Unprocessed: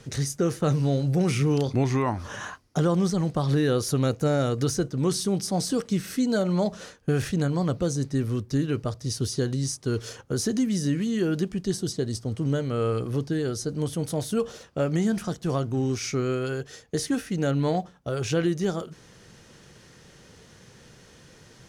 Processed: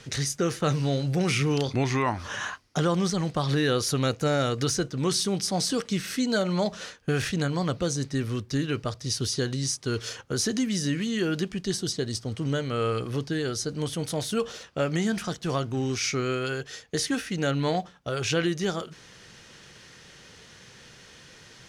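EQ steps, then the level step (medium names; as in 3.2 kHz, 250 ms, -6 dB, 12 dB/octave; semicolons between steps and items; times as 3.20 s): peaking EQ 2.9 kHz +9.5 dB 3 oct; -3.0 dB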